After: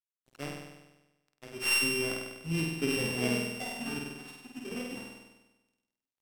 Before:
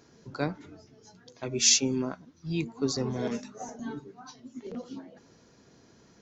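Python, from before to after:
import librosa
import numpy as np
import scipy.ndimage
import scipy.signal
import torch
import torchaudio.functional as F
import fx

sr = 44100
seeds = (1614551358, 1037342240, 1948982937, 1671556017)

y = np.r_[np.sort(x[:len(x) // 16 * 16].reshape(-1, 16), axis=1).ravel(), x[len(x) // 16 * 16:]]
y = fx.rider(y, sr, range_db=5, speed_s=0.5)
y = fx.quant_dither(y, sr, seeds[0], bits=10, dither='triangular')
y = np.sign(y) * np.maximum(np.abs(y) - 10.0 ** (-42.5 / 20.0), 0.0)
y = fx.room_flutter(y, sr, wall_m=8.4, rt60_s=1.1)
y = np.interp(np.arange(len(y)), np.arange(len(y))[::2], y[::2])
y = y * librosa.db_to_amplitude(-4.5)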